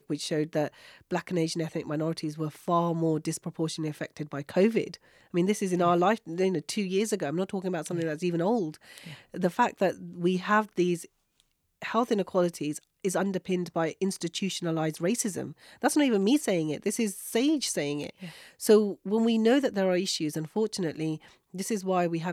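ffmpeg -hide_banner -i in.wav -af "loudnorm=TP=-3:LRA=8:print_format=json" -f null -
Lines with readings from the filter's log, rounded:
"input_i" : "-28.4",
"input_tp" : "-9.6",
"input_lra" : "3.5",
"input_thresh" : "-38.8",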